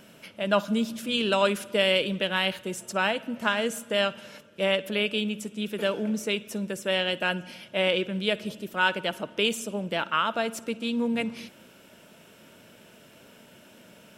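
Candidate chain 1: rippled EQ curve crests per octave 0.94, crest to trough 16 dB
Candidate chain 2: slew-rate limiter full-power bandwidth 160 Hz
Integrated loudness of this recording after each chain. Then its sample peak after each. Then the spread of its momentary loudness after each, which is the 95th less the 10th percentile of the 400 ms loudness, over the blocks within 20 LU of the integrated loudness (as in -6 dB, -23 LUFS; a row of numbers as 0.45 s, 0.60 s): -24.5 LUFS, -28.0 LUFS; -7.5 dBFS, -9.5 dBFS; 9 LU, 8 LU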